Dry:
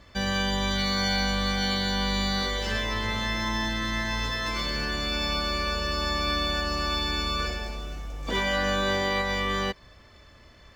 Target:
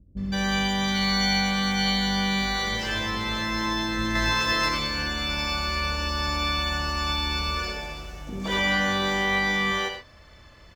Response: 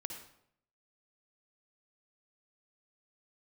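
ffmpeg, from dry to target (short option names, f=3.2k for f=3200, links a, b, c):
-filter_complex "[0:a]asettb=1/sr,asplit=3[a][b][c];[a]atrim=end=3.984[d];[b]atrim=start=3.98:end=4.52,asetpts=PTS-STARTPTS,afade=t=in:d=0.004:c=qsin,afade=t=out:st=0.536:d=0.004:c=qsin,acontrast=30[e];[c]atrim=start=4.516[f];[d][e]acrossfade=d=0.004:c1=hsin:c2=qsin[g];[g][f]acrossfade=d=0.004:c1=qsin:c2=hsin,acrossover=split=320[h][i];[i]adelay=170[j];[h][j]amix=inputs=2:normalize=0[k];[1:a]atrim=start_sample=2205,afade=t=out:st=0.19:d=0.01,atrim=end_sample=8820[l];[k][l]afir=irnorm=-1:irlink=0,volume=4dB"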